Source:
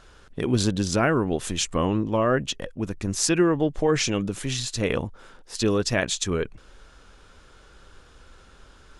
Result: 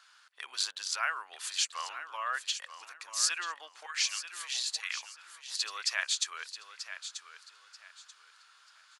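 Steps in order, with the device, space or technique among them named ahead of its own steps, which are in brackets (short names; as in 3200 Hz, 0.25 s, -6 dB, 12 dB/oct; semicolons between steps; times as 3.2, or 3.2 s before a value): 3.86–5.03 HPF 1400 Hz 12 dB/oct; headphones lying on a table (HPF 1100 Hz 24 dB/oct; bell 4500 Hz +7 dB 0.21 oct); feedback echo 0.936 s, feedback 26%, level -11 dB; gain -4.5 dB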